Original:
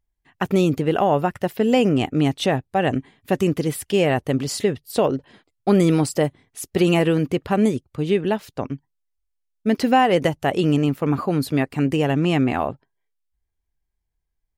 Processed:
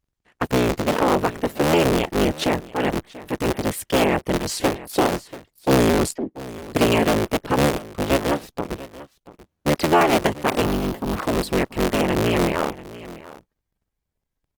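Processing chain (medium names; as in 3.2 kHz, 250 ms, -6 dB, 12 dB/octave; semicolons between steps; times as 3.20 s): cycle switcher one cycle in 3, inverted; bass shelf 100 Hz -4.5 dB; 6.14–6.70 s: auto-wah 290–2600 Hz, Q 3.2, down, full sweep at -20.5 dBFS; 10.65–11.17 s: graphic EQ 500/2000/8000 Hz -9/-11/-9 dB; delay 686 ms -17.5 dB; 2.45–3.64 s: transient shaper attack -7 dB, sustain -3 dB; Opus 16 kbps 48 kHz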